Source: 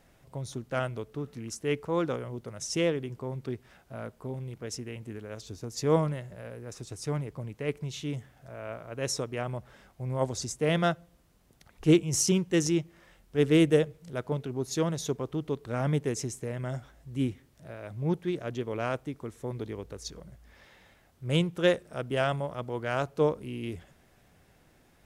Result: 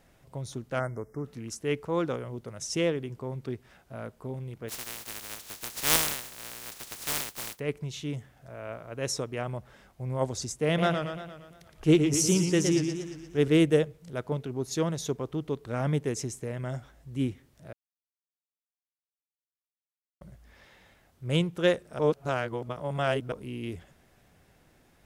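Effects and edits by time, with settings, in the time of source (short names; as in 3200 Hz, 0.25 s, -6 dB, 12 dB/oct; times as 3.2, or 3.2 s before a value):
0.8–1.25 spectral delete 2200–4900 Hz
4.68–7.58 spectral contrast lowered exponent 0.12
10.66–13.48 warbling echo 0.116 s, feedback 56%, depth 140 cents, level -6 dB
17.73–20.21 mute
21.99–23.32 reverse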